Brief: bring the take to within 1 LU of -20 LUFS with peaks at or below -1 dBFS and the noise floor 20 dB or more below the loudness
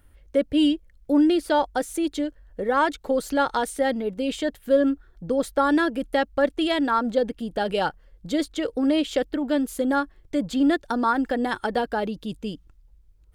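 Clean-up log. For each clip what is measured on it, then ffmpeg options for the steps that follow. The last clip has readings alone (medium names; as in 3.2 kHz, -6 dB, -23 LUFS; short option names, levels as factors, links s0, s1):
loudness -24.5 LUFS; peak level -9.0 dBFS; loudness target -20.0 LUFS
-> -af "volume=1.68"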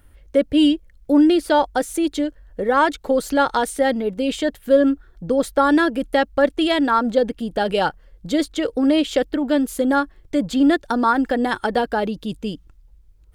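loudness -20.0 LUFS; peak level -4.5 dBFS; noise floor -51 dBFS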